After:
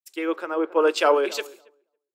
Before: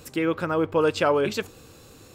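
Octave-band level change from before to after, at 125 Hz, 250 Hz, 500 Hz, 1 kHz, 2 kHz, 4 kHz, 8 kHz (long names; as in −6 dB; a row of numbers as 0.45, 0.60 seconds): below −30 dB, −2.5 dB, +1.5 dB, +2.5 dB, +1.0 dB, +2.5 dB, +2.5 dB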